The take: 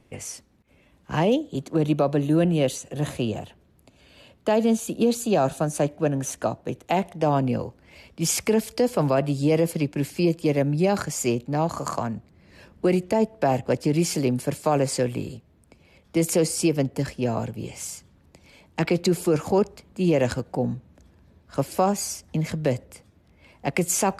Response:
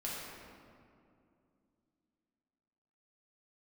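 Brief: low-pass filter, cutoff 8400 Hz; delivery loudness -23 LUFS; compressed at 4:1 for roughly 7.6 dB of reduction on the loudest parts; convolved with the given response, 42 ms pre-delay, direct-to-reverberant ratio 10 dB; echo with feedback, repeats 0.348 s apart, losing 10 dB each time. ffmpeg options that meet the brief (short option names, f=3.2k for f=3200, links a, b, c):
-filter_complex "[0:a]lowpass=8.4k,acompressor=threshold=-25dB:ratio=4,aecho=1:1:348|696|1044|1392:0.316|0.101|0.0324|0.0104,asplit=2[a][b];[1:a]atrim=start_sample=2205,adelay=42[c];[b][c]afir=irnorm=-1:irlink=0,volume=-12.5dB[d];[a][d]amix=inputs=2:normalize=0,volume=7dB"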